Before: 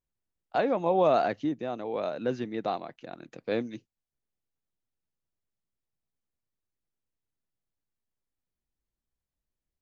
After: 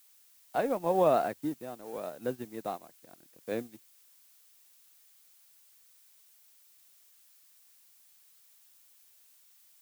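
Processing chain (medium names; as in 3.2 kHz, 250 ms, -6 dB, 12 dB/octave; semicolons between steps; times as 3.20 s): companding laws mixed up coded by A; treble shelf 3.6 kHz -9.5 dB; added noise blue -49 dBFS; upward expansion 1.5:1, over -46 dBFS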